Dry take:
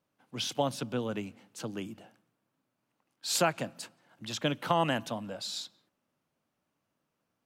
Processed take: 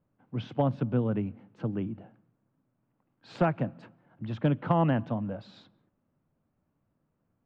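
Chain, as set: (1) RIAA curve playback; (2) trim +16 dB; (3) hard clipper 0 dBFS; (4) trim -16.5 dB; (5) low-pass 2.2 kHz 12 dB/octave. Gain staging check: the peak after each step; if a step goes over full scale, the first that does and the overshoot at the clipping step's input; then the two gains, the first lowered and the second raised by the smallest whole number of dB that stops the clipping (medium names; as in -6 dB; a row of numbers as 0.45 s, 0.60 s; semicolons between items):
-11.0 dBFS, +5.0 dBFS, 0.0 dBFS, -16.5 dBFS, -16.0 dBFS; step 2, 5.0 dB; step 2 +11 dB, step 4 -11.5 dB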